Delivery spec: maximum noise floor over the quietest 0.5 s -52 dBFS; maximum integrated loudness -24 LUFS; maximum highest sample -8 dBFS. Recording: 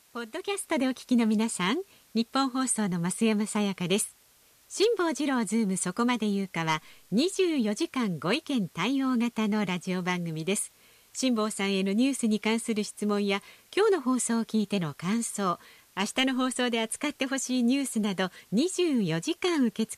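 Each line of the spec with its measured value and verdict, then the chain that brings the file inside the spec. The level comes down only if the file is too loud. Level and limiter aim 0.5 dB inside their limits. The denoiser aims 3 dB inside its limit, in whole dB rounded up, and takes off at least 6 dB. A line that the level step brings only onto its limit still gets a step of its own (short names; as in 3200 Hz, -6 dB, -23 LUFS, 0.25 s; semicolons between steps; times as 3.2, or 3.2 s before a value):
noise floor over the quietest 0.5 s -61 dBFS: OK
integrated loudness -28.0 LUFS: OK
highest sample -14.0 dBFS: OK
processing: none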